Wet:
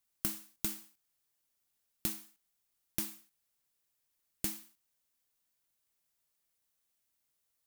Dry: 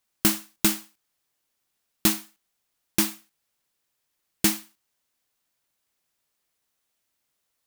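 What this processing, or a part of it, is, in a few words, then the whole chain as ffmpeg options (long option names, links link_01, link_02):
ASMR close-microphone chain: -af "lowshelf=frequency=120:gain=6,acompressor=threshold=-29dB:ratio=4,highshelf=frequency=6700:gain=7.5,volume=-8.5dB"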